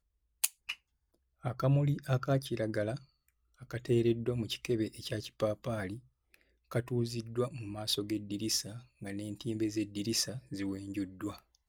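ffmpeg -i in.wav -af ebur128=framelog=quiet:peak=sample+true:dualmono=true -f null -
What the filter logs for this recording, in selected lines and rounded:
Integrated loudness:
  I:         -31.9 LUFS
  Threshold: -42.2 LUFS
Loudness range:
  LRA:         3.4 LU
  Threshold: -52.3 LUFS
  LRA low:   -33.8 LUFS
  LRA high:  -30.4 LUFS
Sample peak:
  Peak:      -11.4 dBFS
True peak:
  Peak:      -11.3 dBFS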